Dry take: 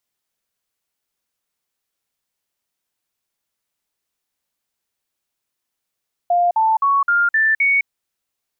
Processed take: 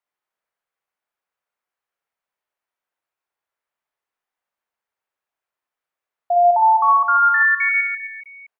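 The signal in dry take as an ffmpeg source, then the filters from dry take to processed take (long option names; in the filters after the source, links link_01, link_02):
-f lavfi -i "aevalsrc='0.237*clip(min(mod(t,0.26),0.21-mod(t,0.26))/0.005,0,1)*sin(2*PI*702*pow(2,floor(t/0.26)/3)*mod(t,0.26))':duration=1.56:sample_rate=44100"
-filter_complex "[0:a]acrossover=split=480 2200:gain=0.2 1 0.141[link_01][link_02][link_03];[link_01][link_02][link_03]amix=inputs=3:normalize=0,aecho=1:1:60|144|261.6|426.2|656.7:0.631|0.398|0.251|0.158|0.1"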